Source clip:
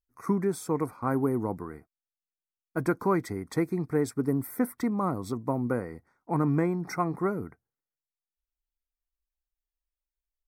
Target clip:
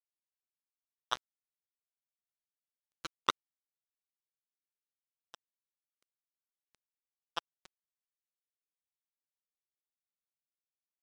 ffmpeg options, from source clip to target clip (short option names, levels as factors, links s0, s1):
-af "asetrate=41895,aresample=44100,bandpass=f=1300:t=q:w=4.1:csg=0,acrusher=bits=3:mix=0:aa=0.5,volume=5.62"